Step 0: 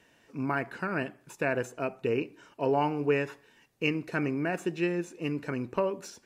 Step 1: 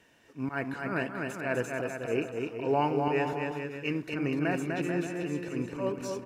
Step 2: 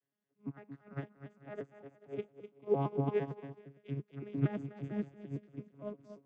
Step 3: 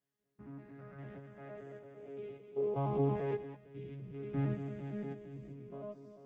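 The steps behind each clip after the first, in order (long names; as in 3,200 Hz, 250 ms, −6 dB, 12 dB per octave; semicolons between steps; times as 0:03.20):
volume swells 108 ms; bouncing-ball delay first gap 250 ms, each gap 0.75×, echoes 5
vocoder with an arpeggio as carrier bare fifth, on C#3, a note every 114 ms; expander for the loud parts 2.5 to 1, over −40 dBFS
spectrum averaged block by block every 200 ms; multi-voice chorus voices 6, 0.61 Hz, delay 16 ms, depth 1.7 ms; level +4.5 dB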